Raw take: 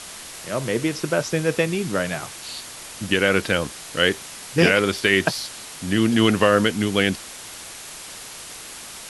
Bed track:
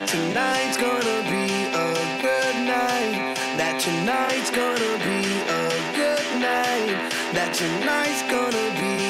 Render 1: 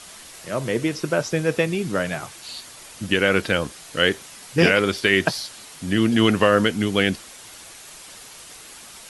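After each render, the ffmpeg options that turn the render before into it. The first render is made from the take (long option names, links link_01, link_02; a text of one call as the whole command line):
ffmpeg -i in.wav -af "afftdn=noise_reduction=6:noise_floor=-38" out.wav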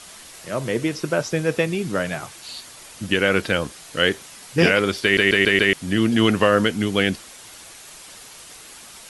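ffmpeg -i in.wav -filter_complex "[0:a]asplit=6[link_01][link_02][link_03][link_04][link_05][link_06];[link_01]atrim=end=5.172[link_07];[link_02]atrim=start=5.028:end=5.172[link_08];[link_03]atrim=start=5.028:end=5.172[link_09];[link_04]atrim=start=5.028:end=5.172[link_10];[link_05]atrim=start=5.028:end=5.172[link_11];[link_06]atrim=start=5.728[link_12];[link_07][link_08]acrossfade=duration=0.004:curve1=hsin:curve2=hsin[link_13];[link_13][link_09]acrossfade=duration=0.004:curve1=hsin:curve2=hsin[link_14];[link_14][link_10]acrossfade=duration=0.004:curve1=hsin:curve2=hsin[link_15];[link_15][link_11]acrossfade=duration=0.004:curve1=hsin:curve2=hsin[link_16];[link_16][link_12]acrossfade=duration=0.004:curve1=hsin:curve2=hsin" out.wav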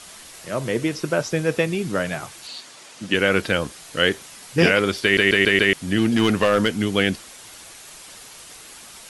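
ffmpeg -i in.wav -filter_complex "[0:a]asettb=1/sr,asplit=3[link_01][link_02][link_03];[link_01]atrim=end=2.474[link_04];[link_02]atrim=start=2.47:end=3.14,asetpts=PTS-STARTPTS,afade=type=in:duration=0.004:curve=qsin,afade=type=out:start_time=0.666:duration=0.004:curve=qsin,highpass=180,lowpass=7800[link_05];[link_03]atrim=start=3.136[link_06];[link_04][link_05]acrossfade=duration=0.004:curve1=hsin:curve2=qsin[link_07];[link_07][link_06]acrossfade=duration=0.004:curve1=qsin:curve2=hsin,asettb=1/sr,asplit=3[link_08][link_09][link_10];[link_08]atrim=end=5.984[link_11];[link_09]atrim=start=5.98:end=6.86,asetpts=PTS-STARTPTS,afade=type=in:duration=0.004:curve=qsin,afade=type=out:start_time=0.876:duration=0.004:curve=qsin,asoftclip=type=hard:threshold=-11dB[link_12];[link_10]atrim=start=6.856[link_13];[link_11][link_12]acrossfade=duration=0.004:curve1=hsin:curve2=qsin[link_14];[link_14][link_13]acrossfade=duration=0.004:curve1=qsin:curve2=hsin" out.wav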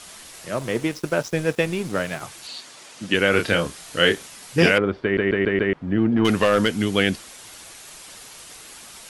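ffmpeg -i in.wav -filter_complex "[0:a]asettb=1/sr,asplit=3[link_01][link_02][link_03];[link_01]atrim=end=0.564[link_04];[link_02]atrim=start=0.56:end=2.21,asetpts=PTS-STARTPTS,afade=type=in:duration=0.004:curve=qsin,afade=type=out:start_time=1.646:duration=0.004:curve=qsin,aeval=exprs='sgn(val(0))*max(abs(val(0))-0.0141,0)':channel_layout=same[link_05];[link_03]atrim=start=2.206[link_06];[link_04][link_05]acrossfade=duration=0.004:curve1=hsin:curve2=qsin[link_07];[link_07][link_06]acrossfade=duration=0.004:curve1=qsin:curve2=hsin,asettb=1/sr,asplit=3[link_08][link_09][link_10];[link_08]atrim=end=3.304[link_11];[link_09]atrim=start=3.3:end=4.28,asetpts=PTS-STARTPTS,afade=type=in:duration=0.004:curve=qsin,afade=type=out:start_time=0.976:duration=0.004:curve=qsin,asplit=2[link_12][link_13];[link_13]adelay=29,volume=-5.5dB[link_14];[link_12][link_14]amix=inputs=2:normalize=0,atrim=end_sample=43218[link_15];[link_10]atrim=start=4.276[link_16];[link_11][link_15]acrossfade=duration=0.004:curve1=hsin:curve2=qsin[link_17];[link_17][link_16]acrossfade=duration=0.004:curve1=qsin:curve2=hsin,asettb=1/sr,asplit=3[link_18][link_19][link_20];[link_18]atrim=end=4.784[link_21];[link_19]atrim=start=4.78:end=6.25,asetpts=PTS-STARTPTS,afade=type=in:duration=0.004:curve=qsin,afade=type=out:start_time=1.466:duration=0.004:curve=qsin,lowpass=1200[link_22];[link_20]atrim=start=6.246[link_23];[link_21][link_22]acrossfade=duration=0.004:curve1=hsin:curve2=qsin[link_24];[link_24][link_23]acrossfade=duration=0.004:curve1=qsin:curve2=hsin" out.wav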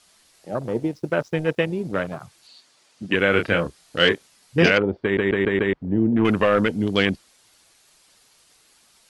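ffmpeg -i in.wav -af "afwtdn=0.0398,equalizer=frequency=4500:width=2.6:gain=4" out.wav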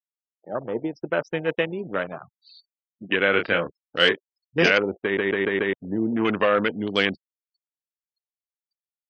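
ffmpeg -i in.wav -af "highpass=frequency=360:poles=1,afftfilt=real='re*gte(hypot(re,im),0.00562)':imag='im*gte(hypot(re,im),0.00562)':win_size=1024:overlap=0.75" out.wav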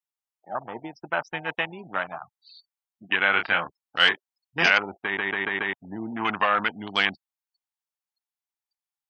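ffmpeg -i in.wav -af "lowshelf=frequency=630:width_type=q:width=3:gain=-7.5" out.wav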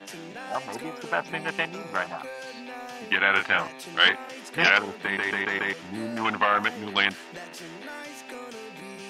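ffmpeg -i in.wav -i bed.wav -filter_complex "[1:a]volume=-17dB[link_01];[0:a][link_01]amix=inputs=2:normalize=0" out.wav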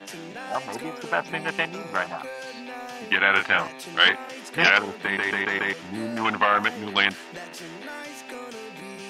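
ffmpeg -i in.wav -af "volume=2dB,alimiter=limit=-3dB:level=0:latency=1" out.wav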